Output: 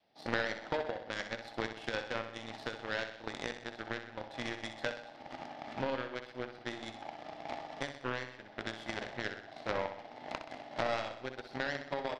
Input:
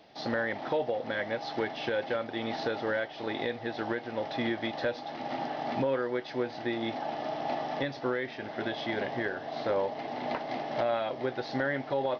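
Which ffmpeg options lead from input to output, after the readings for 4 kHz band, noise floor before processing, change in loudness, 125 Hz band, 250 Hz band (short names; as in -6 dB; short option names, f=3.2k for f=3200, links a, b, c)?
-3.5 dB, -43 dBFS, -7.0 dB, -6.0 dB, -9.5 dB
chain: -af "adynamicequalizer=threshold=0.00631:dfrequency=360:dqfactor=1.2:tfrequency=360:tqfactor=1.2:attack=5:release=100:ratio=0.375:range=2.5:mode=cutabove:tftype=bell,aeval=exprs='0.119*(cos(1*acos(clip(val(0)/0.119,-1,1)))-cos(1*PI/2))+0.0376*(cos(3*acos(clip(val(0)/0.119,-1,1)))-cos(3*PI/2))+0.000841*(cos(5*acos(clip(val(0)/0.119,-1,1)))-cos(5*PI/2))':c=same,aecho=1:1:63|126|189|252|315|378:0.355|0.192|0.103|0.0559|0.0302|0.0163,volume=4.5dB"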